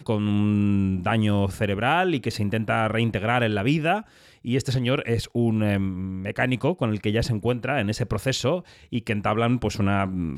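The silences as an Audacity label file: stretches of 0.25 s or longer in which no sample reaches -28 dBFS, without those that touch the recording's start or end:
4.000000	4.450000	silence
8.590000	8.930000	silence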